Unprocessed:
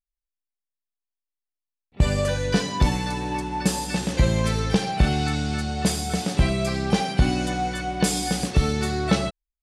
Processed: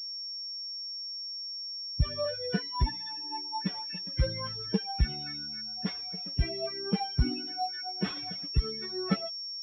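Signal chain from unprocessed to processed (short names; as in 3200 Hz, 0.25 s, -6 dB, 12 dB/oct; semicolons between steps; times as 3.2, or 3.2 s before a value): per-bin expansion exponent 3; pulse-width modulation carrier 5500 Hz; gain -3.5 dB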